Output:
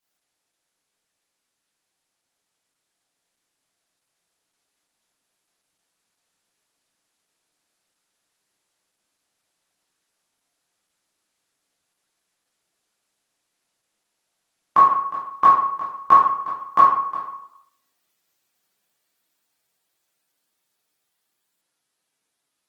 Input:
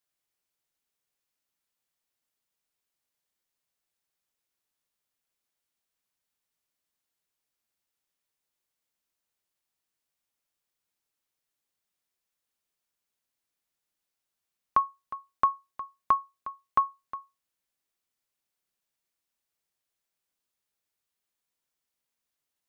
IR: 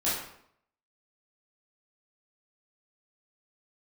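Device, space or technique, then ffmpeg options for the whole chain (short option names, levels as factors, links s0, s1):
far-field microphone of a smart speaker: -filter_complex "[1:a]atrim=start_sample=2205[s0];[0:a][s0]afir=irnorm=-1:irlink=0,highpass=120,dynaudnorm=f=910:g=9:m=1.41,volume=1.26" -ar 48000 -c:a libopus -b:a 16k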